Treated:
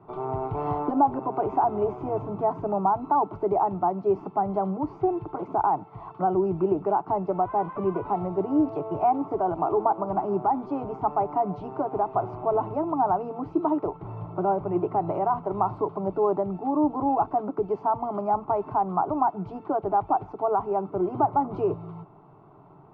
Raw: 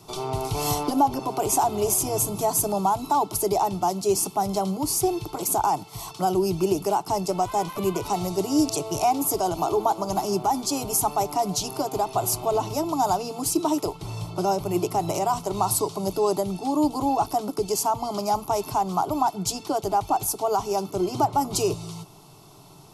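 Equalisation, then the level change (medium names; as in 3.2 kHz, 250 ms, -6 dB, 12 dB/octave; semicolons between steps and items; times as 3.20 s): low-pass 1.6 kHz 24 dB/octave; distance through air 55 m; bass shelf 98 Hz -9 dB; 0.0 dB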